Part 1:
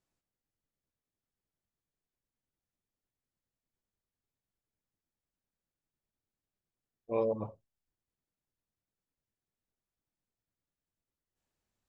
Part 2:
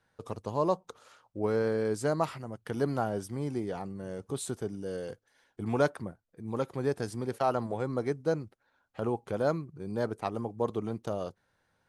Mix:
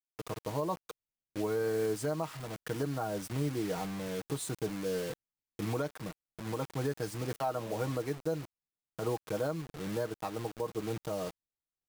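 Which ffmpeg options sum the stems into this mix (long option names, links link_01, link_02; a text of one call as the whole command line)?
ffmpeg -i stem1.wav -i stem2.wav -filter_complex "[0:a]adelay=450,volume=-11dB[link_01];[1:a]aecho=1:1:6.4:0.62,acrusher=bits=6:mix=0:aa=0.000001,volume=0dB[link_02];[link_01][link_02]amix=inputs=2:normalize=0,alimiter=limit=-23dB:level=0:latency=1:release=350" out.wav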